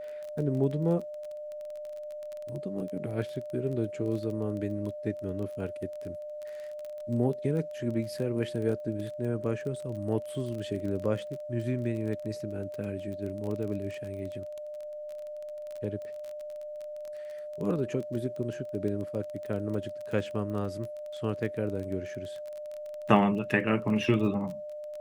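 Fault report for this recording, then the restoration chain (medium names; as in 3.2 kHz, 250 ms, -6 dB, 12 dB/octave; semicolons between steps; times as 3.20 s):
crackle 22 per s -35 dBFS
whine 600 Hz -37 dBFS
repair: de-click; band-stop 600 Hz, Q 30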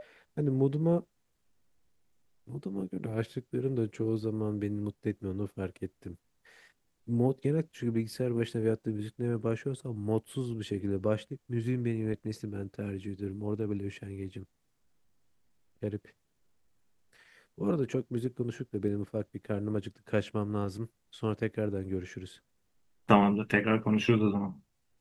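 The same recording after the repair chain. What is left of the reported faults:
nothing left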